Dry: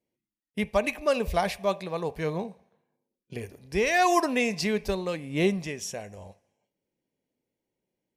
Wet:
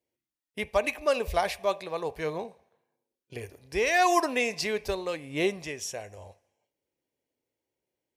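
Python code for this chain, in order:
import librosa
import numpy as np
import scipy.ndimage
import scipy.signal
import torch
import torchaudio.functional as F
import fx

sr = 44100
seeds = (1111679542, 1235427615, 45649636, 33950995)

y = scipy.signal.sosfilt(scipy.signal.butter(2, 43.0, 'highpass', fs=sr, output='sos'), x)
y = fx.peak_eq(y, sr, hz=190.0, db=-12.0, octaves=0.84)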